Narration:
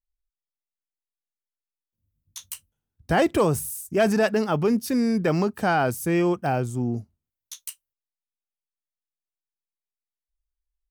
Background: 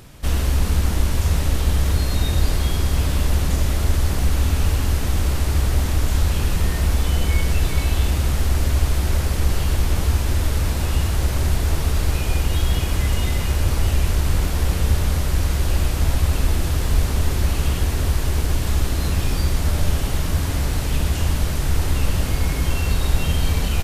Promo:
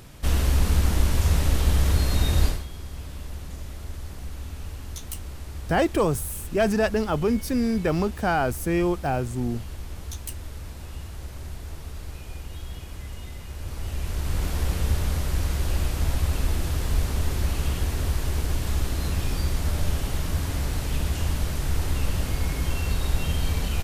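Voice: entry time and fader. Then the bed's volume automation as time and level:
2.60 s, -1.5 dB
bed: 2.46 s -2 dB
2.66 s -17 dB
13.47 s -17 dB
14.49 s -5.5 dB

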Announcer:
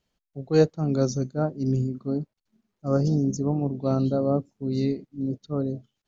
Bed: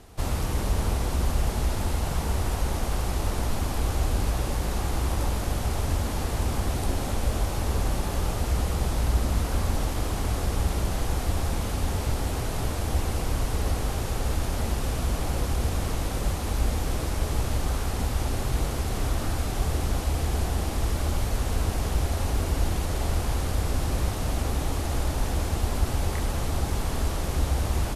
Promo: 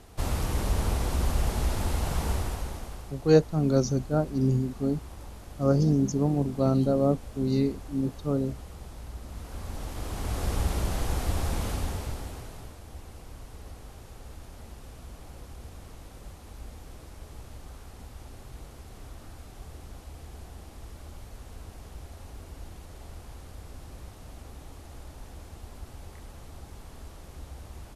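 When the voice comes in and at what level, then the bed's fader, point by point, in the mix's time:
2.75 s, 0.0 dB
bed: 2.31 s -1.5 dB
3.15 s -17 dB
9.21 s -17 dB
10.50 s -2 dB
11.70 s -2 dB
12.81 s -18 dB

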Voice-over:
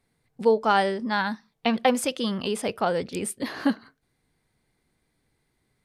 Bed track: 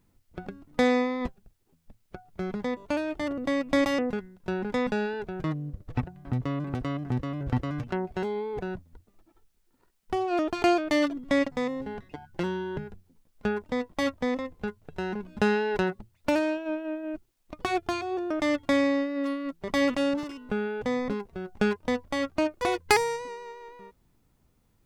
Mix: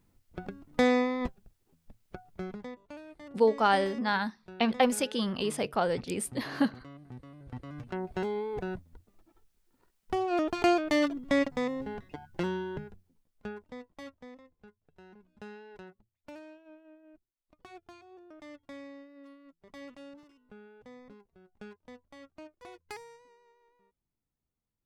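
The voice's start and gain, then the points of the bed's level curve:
2.95 s, -3.5 dB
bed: 2.27 s -1.5 dB
2.89 s -17.5 dB
7.44 s -17.5 dB
8.13 s -2 dB
12.55 s -2 dB
14.43 s -22.5 dB

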